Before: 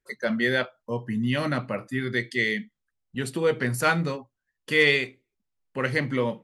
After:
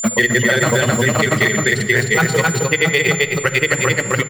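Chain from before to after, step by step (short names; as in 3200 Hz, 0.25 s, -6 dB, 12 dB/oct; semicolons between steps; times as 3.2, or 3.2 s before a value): notches 50/100/150/200/250/300/350/400/450/500 Hz; low-pass opened by the level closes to 1200 Hz, open at -19.5 dBFS; bell 260 Hz -12.5 dB 0.38 oct; reverse; upward compressor, threshold -34 dBFS; reverse; modulation noise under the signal 21 dB; grains, spray 0.724 s, pitch spread up and down by 0 st; whine 7200 Hz -42 dBFS; tempo 1.5×; echo 0.262 s -5 dB; on a send at -13.5 dB: reverb RT60 1.9 s, pre-delay 3 ms; on the sum: maximiser +18.5 dB; three-band squash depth 70%; gain -3 dB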